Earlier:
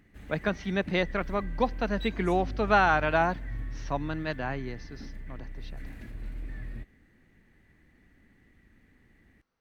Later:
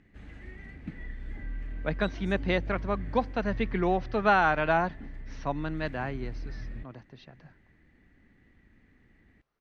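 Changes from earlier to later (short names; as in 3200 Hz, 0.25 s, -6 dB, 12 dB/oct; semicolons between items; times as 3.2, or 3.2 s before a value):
speech: entry +1.55 s; master: add air absorption 90 m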